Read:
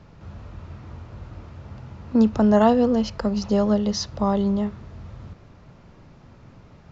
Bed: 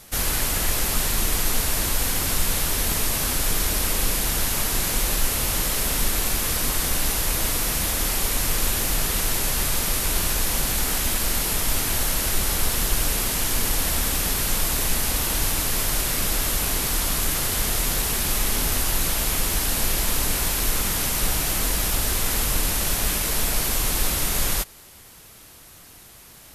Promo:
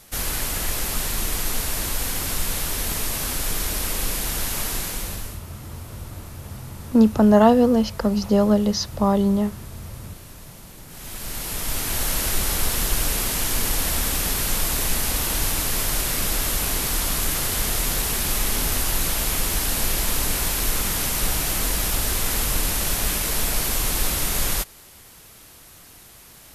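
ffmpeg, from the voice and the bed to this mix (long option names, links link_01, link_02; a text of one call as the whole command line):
ffmpeg -i stem1.wav -i stem2.wav -filter_complex "[0:a]adelay=4800,volume=2.5dB[link_01];[1:a]volume=19dB,afade=type=out:start_time=4.69:duration=0.72:silence=0.112202,afade=type=in:start_time=10.88:duration=1.27:silence=0.0841395[link_02];[link_01][link_02]amix=inputs=2:normalize=0" out.wav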